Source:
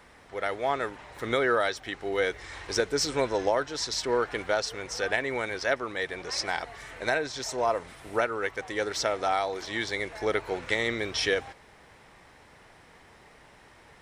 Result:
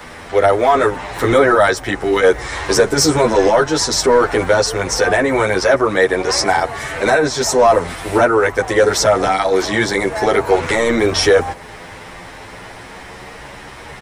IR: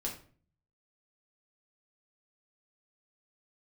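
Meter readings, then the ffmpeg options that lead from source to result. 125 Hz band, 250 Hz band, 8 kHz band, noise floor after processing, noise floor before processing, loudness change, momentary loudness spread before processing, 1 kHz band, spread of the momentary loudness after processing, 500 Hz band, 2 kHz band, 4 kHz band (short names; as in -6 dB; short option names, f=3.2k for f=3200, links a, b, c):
+18.0 dB, +17.0 dB, +15.5 dB, -35 dBFS, -55 dBFS, +14.5 dB, 7 LU, +15.0 dB, 21 LU, +15.5 dB, +12.0 dB, +11.5 dB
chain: -filter_complex "[0:a]acrossover=split=160|1600|6300[a][b][c][d];[c]acompressor=threshold=-49dB:ratio=4[e];[a][b][e][d]amix=inputs=4:normalize=0,apsyclip=26.5dB,asplit=2[f][g];[g]adelay=9.9,afreqshift=0.27[h];[f][h]amix=inputs=2:normalize=1,volume=-3.5dB"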